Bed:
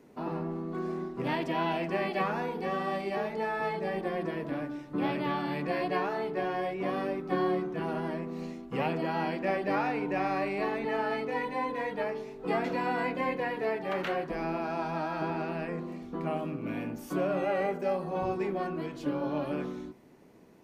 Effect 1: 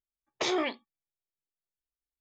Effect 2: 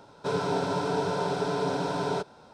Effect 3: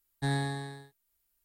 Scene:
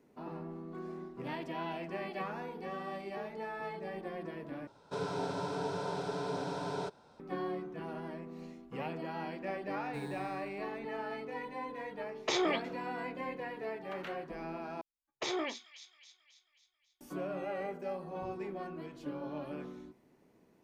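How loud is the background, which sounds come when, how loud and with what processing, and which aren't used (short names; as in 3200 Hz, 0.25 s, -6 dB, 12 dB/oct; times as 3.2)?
bed -9 dB
4.67 replace with 2 -8.5 dB
9.71 add 3 -16 dB + companded quantiser 6-bit
11.87 add 1 -2 dB
14.81 replace with 1 -6.5 dB + thin delay 0.27 s, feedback 53%, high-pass 3700 Hz, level -6 dB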